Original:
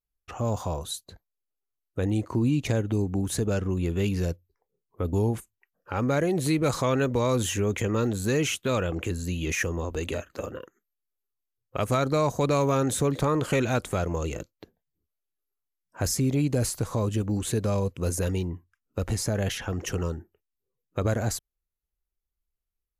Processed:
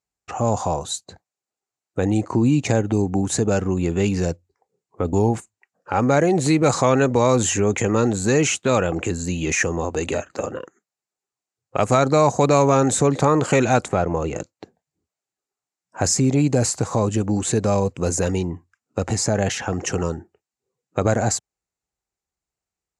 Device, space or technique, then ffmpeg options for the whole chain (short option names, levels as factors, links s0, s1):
car door speaker: -filter_complex "[0:a]asettb=1/sr,asplit=3[s0][s1][s2];[s0]atrim=end=13.884[s3];[s1]atrim=start=13.88:end=14.36,asetpts=PTS-STARTPTS,afade=t=in:d=0.004:c=qsin,afade=t=out:st=0.476:d=0.004:c=qsin,equalizer=f=9100:w=0.5:g=-14.5[s4];[s2]atrim=start=14.356[s5];[s3][s4]acrossfade=d=0.004:c1=hsin:c2=qsin[s6];[s6][s5]acrossfade=d=0.004:c1=qsin:c2=hsin,highpass=110,equalizer=f=780:t=q:w=4:g=7,equalizer=f=3300:t=q:w=4:g=-6,equalizer=f=7300:t=q:w=4:g=7,lowpass=f=8200:w=0.5412,lowpass=f=8200:w=1.3066,volume=2.24"